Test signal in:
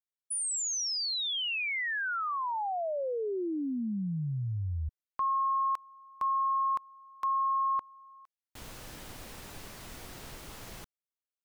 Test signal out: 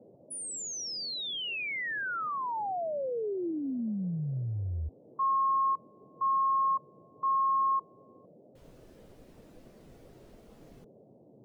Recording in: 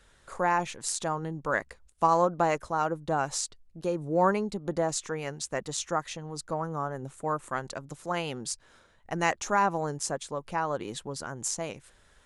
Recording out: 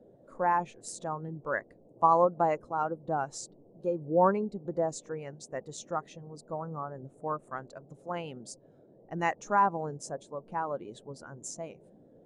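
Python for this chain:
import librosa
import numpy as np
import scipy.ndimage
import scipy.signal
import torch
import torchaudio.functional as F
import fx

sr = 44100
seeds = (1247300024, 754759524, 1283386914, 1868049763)

y = fx.dmg_noise_band(x, sr, seeds[0], low_hz=110.0, high_hz=630.0, level_db=-46.0)
y = fx.spectral_expand(y, sr, expansion=1.5)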